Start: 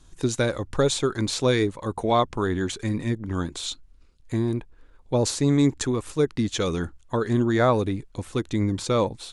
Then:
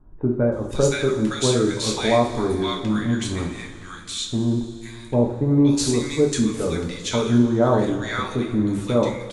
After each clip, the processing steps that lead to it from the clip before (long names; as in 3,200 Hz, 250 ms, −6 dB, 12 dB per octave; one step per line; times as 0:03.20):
multiband delay without the direct sound lows, highs 520 ms, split 1,200 Hz
coupled-rooms reverb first 0.41 s, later 2.9 s, from −16 dB, DRR −1 dB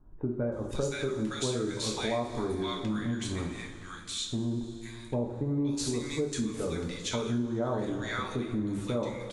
downward compressor 3 to 1, threshold −23 dBFS, peak gain reduction 9 dB
level −6 dB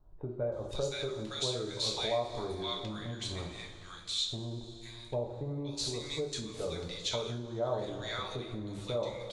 graphic EQ with 15 bands 250 Hz −11 dB, 630 Hz +6 dB, 1,600 Hz −4 dB, 4,000 Hz +9 dB, 10,000 Hz −4 dB
level −4 dB